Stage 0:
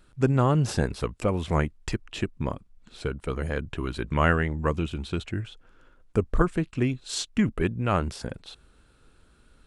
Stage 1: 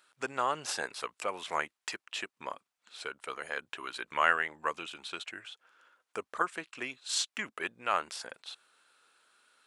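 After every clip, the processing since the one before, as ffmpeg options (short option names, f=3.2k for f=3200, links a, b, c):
-af "highpass=900"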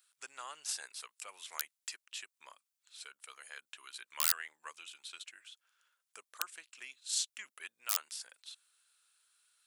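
-af "aeval=exprs='(mod(5.96*val(0)+1,2)-1)/5.96':c=same,aderivative"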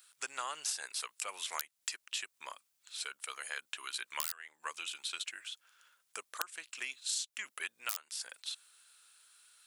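-af "acompressor=threshold=-43dB:ratio=8,volume=9.5dB"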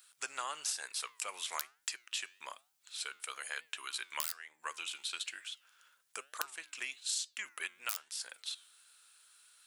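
-af "flanger=delay=6:depth=5.4:regen=89:speed=1.1:shape=triangular,volume=4.5dB"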